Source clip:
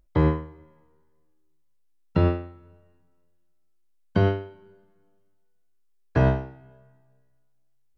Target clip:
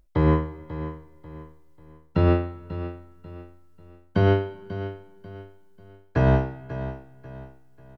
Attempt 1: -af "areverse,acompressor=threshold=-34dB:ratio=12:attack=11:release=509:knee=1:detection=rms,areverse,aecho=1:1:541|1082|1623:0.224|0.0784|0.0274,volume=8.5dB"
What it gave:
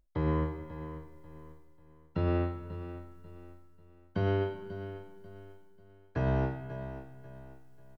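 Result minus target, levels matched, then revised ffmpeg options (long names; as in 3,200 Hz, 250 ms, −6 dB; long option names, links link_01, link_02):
downward compressor: peak gain reduction +10.5 dB
-af "areverse,acompressor=threshold=-22.5dB:ratio=12:attack=11:release=509:knee=1:detection=rms,areverse,aecho=1:1:541|1082|1623:0.224|0.0784|0.0274,volume=8.5dB"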